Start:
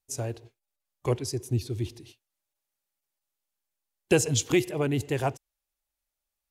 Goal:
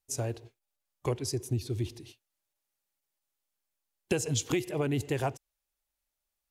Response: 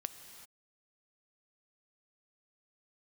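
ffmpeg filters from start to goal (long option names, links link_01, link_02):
-af "acompressor=threshold=-26dB:ratio=5"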